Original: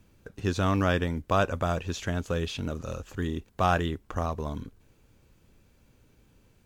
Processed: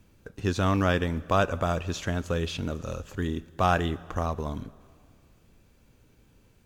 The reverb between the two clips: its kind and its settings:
dense smooth reverb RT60 2.3 s, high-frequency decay 0.9×, DRR 18.5 dB
level +1 dB

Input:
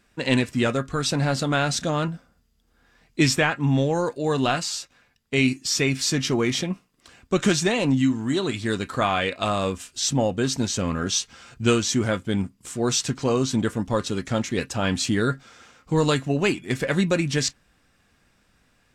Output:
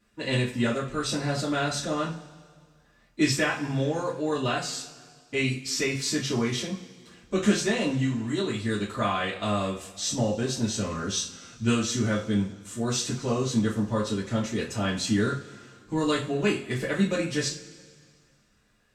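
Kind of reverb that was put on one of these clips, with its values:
coupled-rooms reverb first 0.29 s, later 2 s, from −21 dB, DRR −7 dB
level −12 dB

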